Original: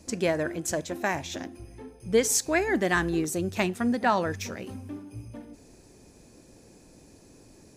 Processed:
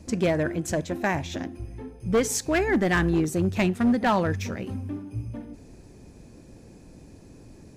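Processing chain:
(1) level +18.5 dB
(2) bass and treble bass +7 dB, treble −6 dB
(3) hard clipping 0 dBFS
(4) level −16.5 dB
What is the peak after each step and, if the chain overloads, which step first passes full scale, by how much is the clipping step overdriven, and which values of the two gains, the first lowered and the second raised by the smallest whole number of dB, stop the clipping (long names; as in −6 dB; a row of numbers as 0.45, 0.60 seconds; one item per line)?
+7.5, +9.0, 0.0, −16.5 dBFS
step 1, 9.0 dB
step 1 +9.5 dB, step 4 −7.5 dB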